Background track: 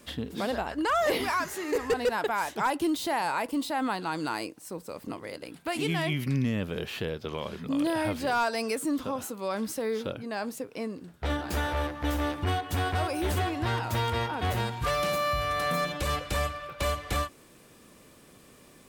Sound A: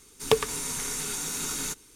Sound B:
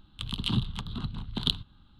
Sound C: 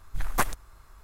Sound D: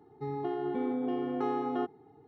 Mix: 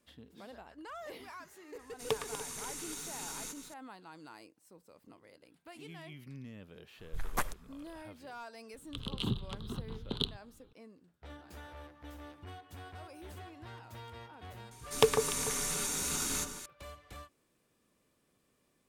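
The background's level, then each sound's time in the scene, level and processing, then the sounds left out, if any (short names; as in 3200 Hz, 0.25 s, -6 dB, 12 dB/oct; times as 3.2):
background track -20 dB
1.79 add A -11.5 dB + regenerating reverse delay 0.146 s, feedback 69%, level -11.5 dB
6.99 add C -8 dB
8.74 add B -7.5 dB + bell 440 Hz +14 dB
14.71 add A -3 dB + echo with dull and thin repeats by turns 0.147 s, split 1400 Hz, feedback 54%, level -6 dB
not used: D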